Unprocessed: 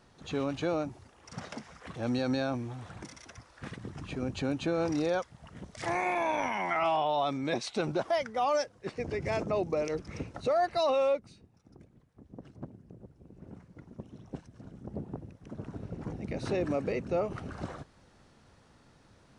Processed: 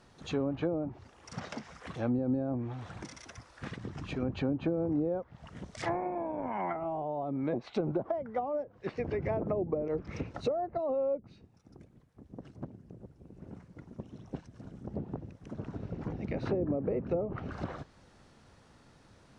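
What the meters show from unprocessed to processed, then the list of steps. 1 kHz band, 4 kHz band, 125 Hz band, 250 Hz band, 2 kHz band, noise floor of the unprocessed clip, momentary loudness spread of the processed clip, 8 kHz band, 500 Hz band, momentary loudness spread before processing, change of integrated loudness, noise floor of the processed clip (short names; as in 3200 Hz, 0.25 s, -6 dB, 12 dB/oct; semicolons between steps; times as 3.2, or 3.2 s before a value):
-6.5 dB, -9.5 dB, +1.0 dB, +1.0 dB, -8.5 dB, -62 dBFS, 18 LU, n/a, -2.5 dB, 19 LU, -3.0 dB, -61 dBFS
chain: treble ducked by the level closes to 460 Hz, closed at -26 dBFS; gain +1 dB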